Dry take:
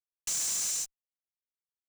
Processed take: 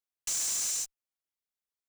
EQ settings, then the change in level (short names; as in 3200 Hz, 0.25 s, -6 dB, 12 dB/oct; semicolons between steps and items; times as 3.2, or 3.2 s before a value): bell 160 Hz -9 dB 0.39 oct; 0.0 dB